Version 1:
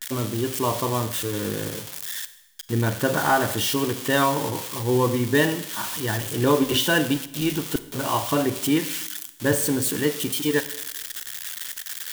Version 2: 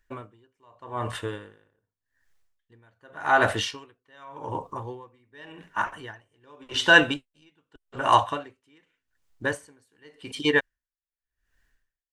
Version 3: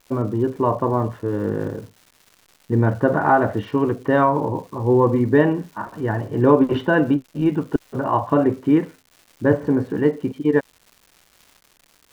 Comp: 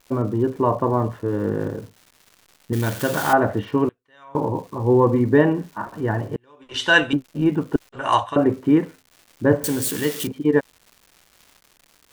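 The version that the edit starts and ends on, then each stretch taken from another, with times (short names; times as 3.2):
3
2.73–3.33 from 1
3.89–4.35 from 2
6.36–7.13 from 2
7.89–8.36 from 2
9.64–10.27 from 1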